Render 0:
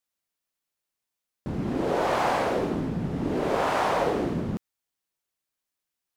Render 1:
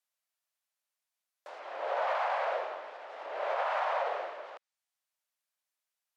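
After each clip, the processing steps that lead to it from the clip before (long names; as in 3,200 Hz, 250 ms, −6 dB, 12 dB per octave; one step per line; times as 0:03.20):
treble cut that deepens with the level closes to 3,000 Hz, closed at −24 dBFS
elliptic high-pass filter 580 Hz, stop band 70 dB
brickwall limiter −21 dBFS, peak gain reduction 6 dB
level −1.5 dB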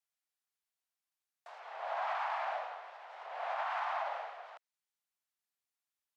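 frequency shifter +110 Hz
level −5 dB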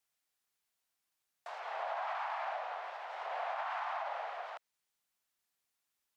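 downward compressor, threshold −42 dBFS, peak gain reduction 9.5 dB
level +6.5 dB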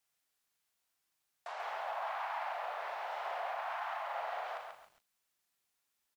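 brickwall limiter −34.5 dBFS, peak gain reduction 8 dB
double-tracking delay 40 ms −6.5 dB
feedback echo at a low word length 137 ms, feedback 35%, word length 11 bits, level −4.5 dB
level +1.5 dB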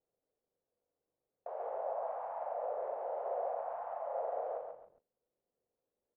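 low-pass with resonance 500 Hz, resonance Q 4.9
level +2.5 dB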